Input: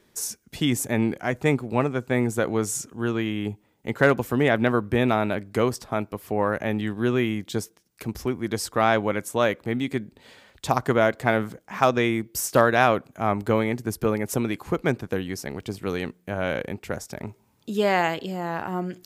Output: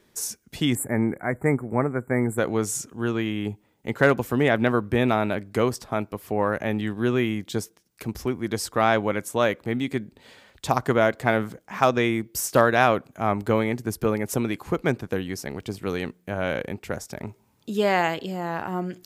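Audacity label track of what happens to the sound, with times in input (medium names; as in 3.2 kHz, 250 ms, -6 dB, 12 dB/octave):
0.750000	2.380000	Chebyshev band-stop 2.2–7.5 kHz, order 5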